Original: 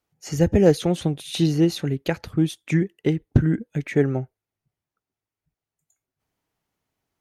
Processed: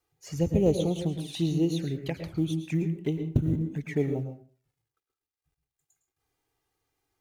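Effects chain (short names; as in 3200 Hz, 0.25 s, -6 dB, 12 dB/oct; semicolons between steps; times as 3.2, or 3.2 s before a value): G.711 law mismatch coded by mu; envelope flanger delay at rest 2.5 ms, full sweep at -17.5 dBFS; reverb RT60 0.40 s, pre-delay 0.104 s, DRR 8 dB; gain -7.5 dB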